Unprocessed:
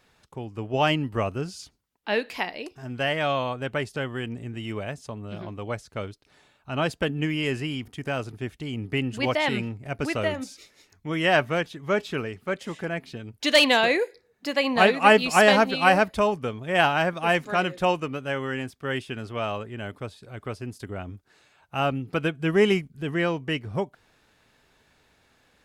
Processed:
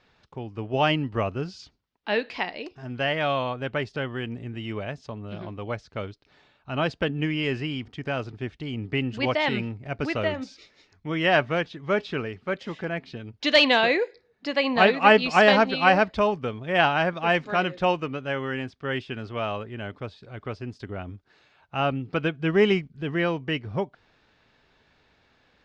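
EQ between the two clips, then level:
low-pass filter 5,200 Hz 24 dB per octave
0.0 dB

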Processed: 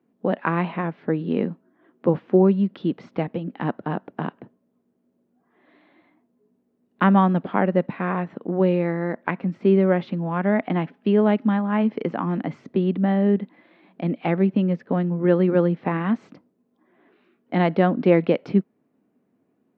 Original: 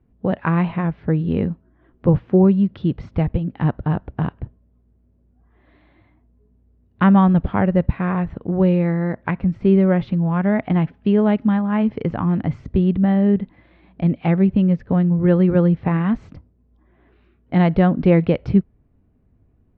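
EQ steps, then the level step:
high-pass filter 210 Hz 24 dB per octave
0.0 dB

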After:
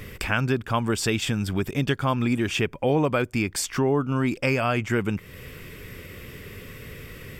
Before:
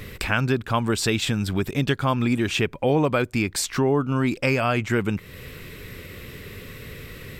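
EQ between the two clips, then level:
notch filter 4,000 Hz, Q 6.9
−1.5 dB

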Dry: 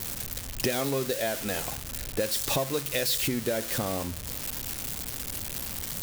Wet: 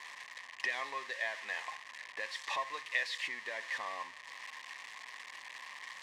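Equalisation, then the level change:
pair of resonant band-passes 1,400 Hz, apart 0.8 octaves
high-frequency loss of the air 100 metres
spectral tilt +4 dB per octave
+3.5 dB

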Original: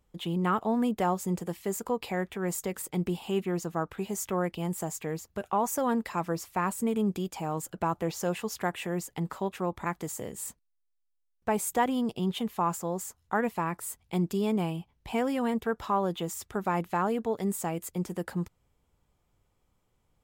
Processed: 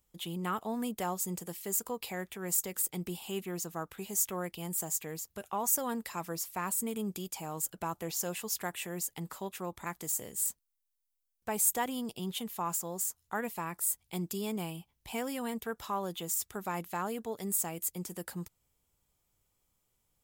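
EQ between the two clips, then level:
first-order pre-emphasis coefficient 0.8
+5.5 dB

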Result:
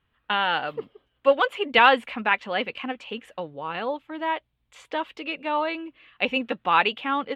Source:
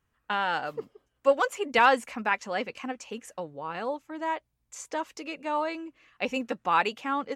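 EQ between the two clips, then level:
high shelf with overshoot 4,600 Hz −11.5 dB, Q 3
+3.0 dB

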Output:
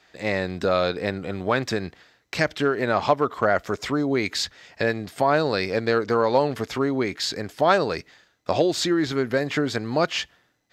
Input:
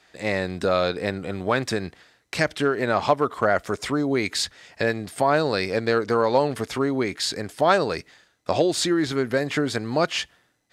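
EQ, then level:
parametric band 9,400 Hz −15 dB 0.3 octaves
0.0 dB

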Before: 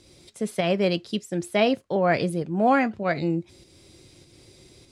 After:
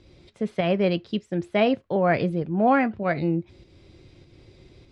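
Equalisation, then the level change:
low-pass filter 3,100 Hz 12 dB per octave
low-shelf EQ 81 Hz +9.5 dB
0.0 dB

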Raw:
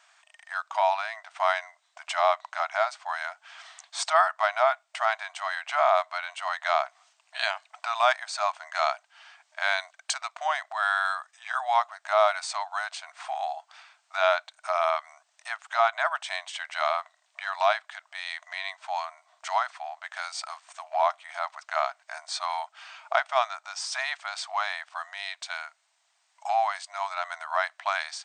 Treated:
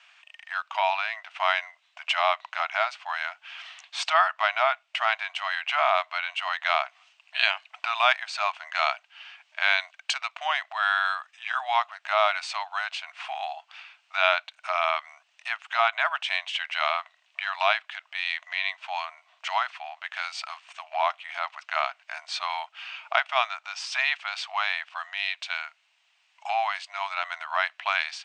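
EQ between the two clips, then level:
band-pass filter 700–5,300 Hz
parametric band 2,700 Hz +12.5 dB 0.64 octaves
0.0 dB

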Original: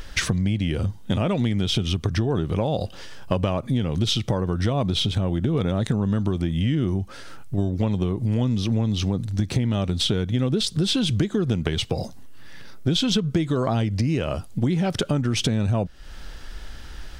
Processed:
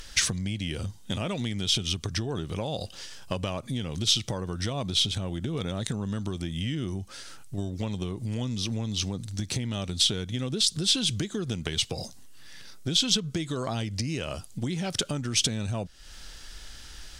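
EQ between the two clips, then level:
parametric band 7,500 Hz +14.5 dB 2.7 octaves
−9.0 dB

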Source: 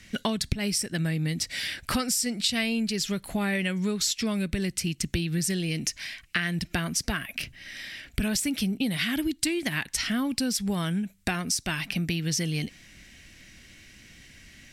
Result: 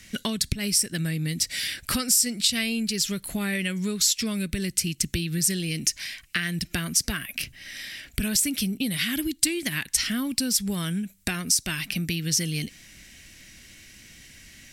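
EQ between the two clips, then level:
dynamic equaliser 780 Hz, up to −7 dB, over −49 dBFS, Q 1.4
high-shelf EQ 5,900 Hz +10.5 dB
0.0 dB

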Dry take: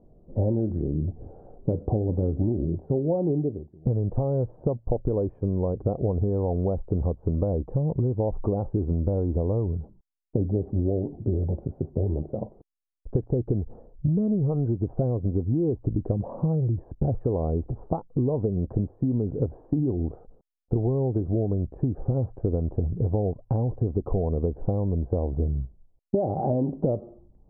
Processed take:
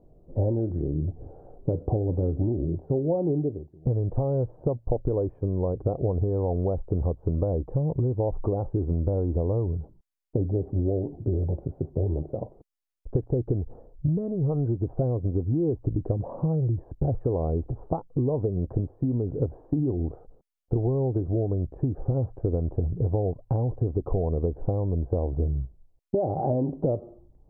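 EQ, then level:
parametric band 210 Hz −8.5 dB 0.27 octaves
0.0 dB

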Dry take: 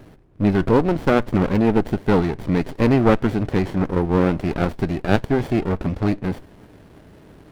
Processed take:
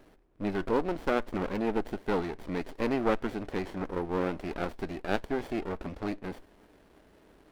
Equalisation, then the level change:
parametric band 120 Hz −14 dB 1.4 octaves
−9.0 dB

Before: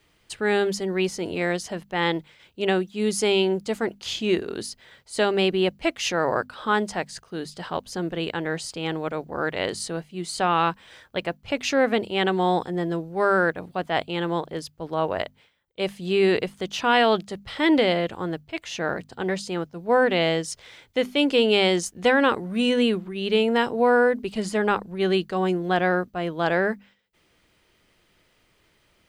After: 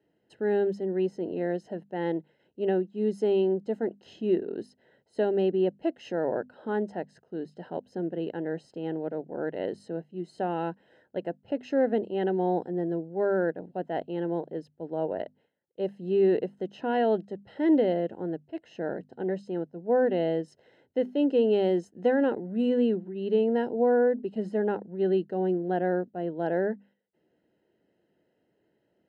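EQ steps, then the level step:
moving average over 38 samples
high-pass filter 220 Hz 12 dB per octave
0.0 dB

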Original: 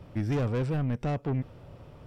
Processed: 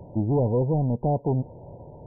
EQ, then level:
linear-phase brick-wall low-pass 1,000 Hz
low-shelf EQ 130 Hz −9 dB
parametric band 270 Hz −4 dB 0.29 octaves
+9.0 dB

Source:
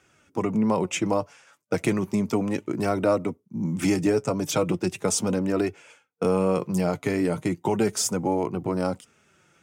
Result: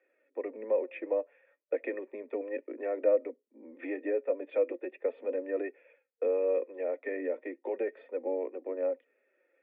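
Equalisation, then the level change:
formant resonators in series e
Butterworth high-pass 250 Hz 96 dB per octave
+2.5 dB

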